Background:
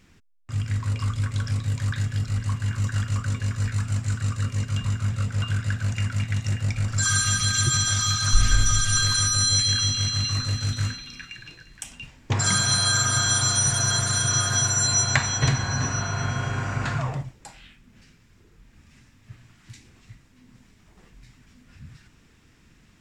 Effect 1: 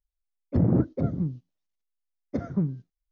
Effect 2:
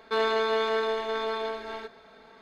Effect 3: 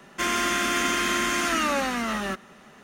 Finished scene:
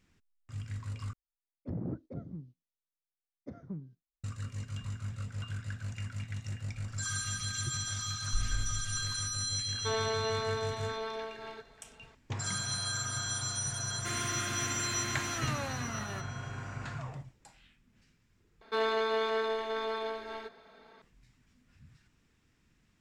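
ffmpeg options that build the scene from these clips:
-filter_complex "[2:a]asplit=2[a][b];[0:a]volume=-13.5dB,asplit=3[c][d][e];[c]atrim=end=1.134[f];[1:a]atrim=end=3.11,asetpts=PTS-STARTPTS,volume=-15.5dB[g];[d]atrim=start=4.236:end=18.614[h];[b]atrim=end=2.41,asetpts=PTS-STARTPTS,volume=-4.5dB[i];[e]atrim=start=21.016[j];[a]atrim=end=2.41,asetpts=PTS-STARTPTS,volume=-7.5dB,afade=t=in:d=0.004:c=hsin,afade=t=out:st=2.406:d=0.004:c=hsin,adelay=9740[k];[3:a]atrim=end=2.83,asetpts=PTS-STARTPTS,volume=-13dB,afade=t=in:d=0.004:c=hsin,afade=t=out:st=2.826:d=0.004:c=hsin,adelay=13860[l];[f][g]acrossfade=d=0.004:c1=hsin:c2=hsin[m];[m][h]acrossfade=d=0.004:c1=hsin:c2=hsin[n];[n][i]acrossfade=d=0.004:c1=hsin:c2=hsin[o];[o][j]acrossfade=d=0.004:c1=hsin:c2=hsin[p];[p][k][l]amix=inputs=3:normalize=0"

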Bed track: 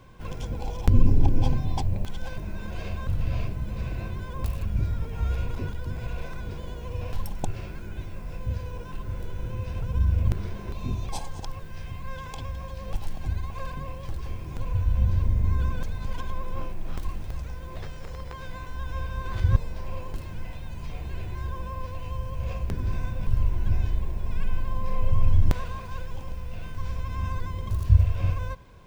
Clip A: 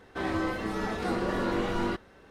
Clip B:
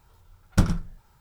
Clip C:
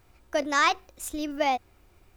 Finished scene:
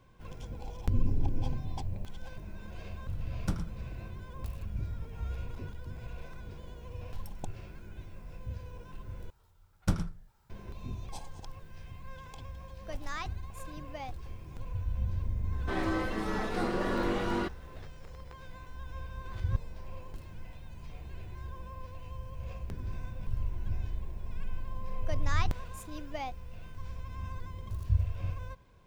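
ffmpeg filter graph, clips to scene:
-filter_complex "[2:a]asplit=2[a][b];[3:a]asplit=2[c][d];[0:a]volume=-10dB,asplit=2[e][f];[e]atrim=end=9.304[g];[b]atrim=end=1.2,asetpts=PTS-STARTPTS,volume=-8.5dB[h];[f]atrim=start=10.496[i];[a]atrim=end=1.2,asetpts=PTS-STARTPTS,volume=-12.5dB,afade=t=in:d=0.004:c=hsin,afade=t=out:st=1.196:d=0.004:c=hsin,adelay=2900[j];[c]atrim=end=2.16,asetpts=PTS-STARTPTS,volume=-17.5dB,afade=t=in:d=0.004:c=hsin,afade=t=out:st=2.156:d=0.004:c=hsin,adelay=12540[k];[1:a]atrim=end=2.3,asetpts=PTS-STARTPTS,volume=-2dB,afade=t=in:d=0.004:c=hsin,afade=t=out:st=2.296:d=0.004:c=hsin,adelay=15520[l];[d]atrim=end=2.16,asetpts=PTS-STARTPTS,volume=-13.5dB,afade=t=in:d=0.004:c=hsin,afade=t=out:st=2.156:d=0.004:c=hsin,adelay=24740[m];[g][h]acrossfade=d=0.004:c1=hsin:c2=hsin[n];[n][i]acrossfade=d=0.004:c1=hsin:c2=hsin[o];[o][j][k][l][m]amix=inputs=5:normalize=0"

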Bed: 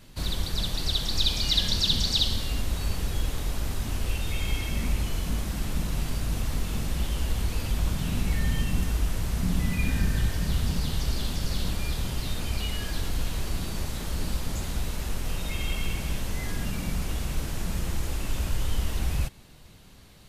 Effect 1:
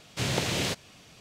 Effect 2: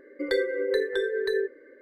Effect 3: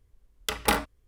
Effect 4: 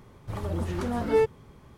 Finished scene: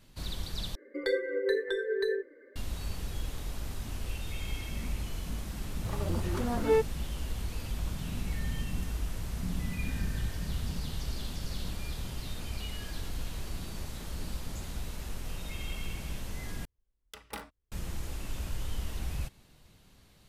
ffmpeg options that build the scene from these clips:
-filter_complex "[0:a]volume=-8dB[a];[2:a]flanger=delay=3:depth=2.1:regen=64:speed=2:shape=sinusoidal[b];[a]asplit=3[c][d][e];[c]atrim=end=0.754[f];[b]atrim=end=1.81[g];[d]atrim=start=2.556:end=16.654[h];[3:a]atrim=end=1.07,asetpts=PTS-STARTPTS,volume=-18dB[i];[e]atrim=start=17.716[j];[4:a]atrim=end=1.77,asetpts=PTS-STARTPTS,volume=-3dB,afade=t=in:d=0.004:c=hsin,afade=t=out:st=1.766:d=0.004:c=hsin,adelay=5560[k];[f][g]acrossfade=d=0.004:c1=hsin:c2=hsin[l];[l][h]acrossfade=d=0.004:c1=hsin:c2=hsin[m];[m][i]acrossfade=d=0.004:c1=hsin:c2=hsin[n];[n][j]acrossfade=d=0.004:c1=hsin:c2=hsin[o];[o][k]amix=inputs=2:normalize=0"

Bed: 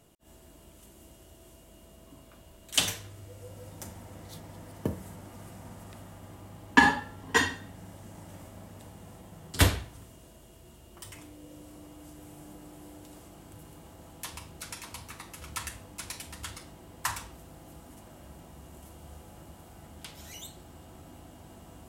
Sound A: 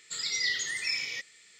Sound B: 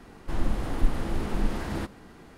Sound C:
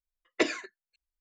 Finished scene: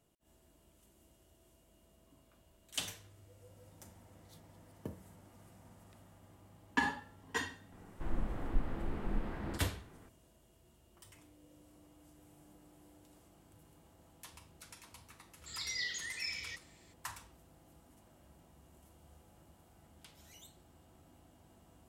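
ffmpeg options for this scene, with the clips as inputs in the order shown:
-filter_complex "[0:a]volume=-13dB[a];[2:a]lowpass=2.5k[b];[1:a]dynaudnorm=f=120:g=3:m=7.5dB[c];[b]atrim=end=2.37,asetpts=PTS-STARTPTS,volume=-9.5dB,afade=t=in:d=0.004:c=hsin,afade=t=out:st=2.366:d=0.004:c=hsin,adelay=7720[d];[c]atrim=end=1.59,asetpts=PTS-STARTPTS,volume=-16.5dB,afade=t=in:d=0.004:c=hsin,afade=t=out:st=1.586:d=0.004:c=hsin,adelay=15350[e];[a][d][e]amix=inputs=3:normalize=0"

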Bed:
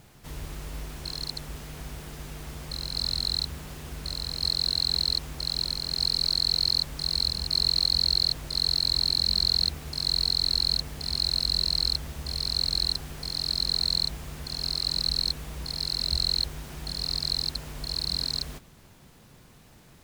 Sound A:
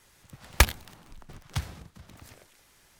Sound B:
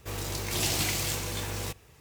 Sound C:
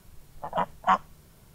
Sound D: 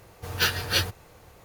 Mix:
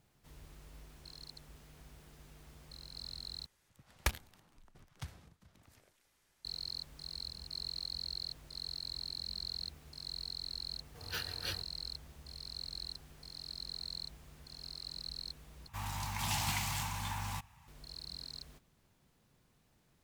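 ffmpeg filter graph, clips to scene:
-filter_complex "[0:a]volume=-17.5dB[a];[2:a]firequalizer=gain_entry='entry(220,0);entry(400,-27);entry(860,10);entry(1300,1);entry(4700,-4)':delay=0.05:min_phase=1[b];[a]asplit=3[c][d][e];[c]atrim=end=3.464[f];[1:a]atrim=end=2.99,asetpts=PTS-STARTPTS,volume=-14dB[g];[d]atrim=start=6.446:end=15.684[h];[b]atrim=end=2,asetpts=PTS-STARTPTS,volume=-5dB[i];[e]atrim=start=17.676[j];[4:a]atrim=end=1.44,asetpts=PTS-STARTPTS,volume=-17dB,afade=t=in:d=0.004:c=hsin,afade=t=out:st=1.436:d=0.004:c=hsin,adelay=10720[k];[f][g]acrossfade=d=0.004:c1=hsin:c2=hsin[l];[l][h]acrossfade=d=0.004:c1=hsin:c2=hsin[m];[m][i]acrossfade=d=0.004:c1=hsin:c2=hsin[n];[n][j]acrossfade=d=0.004:c1=hsin:c2=hsin[o];[o][k]amix=inputs=2:normalize=0"

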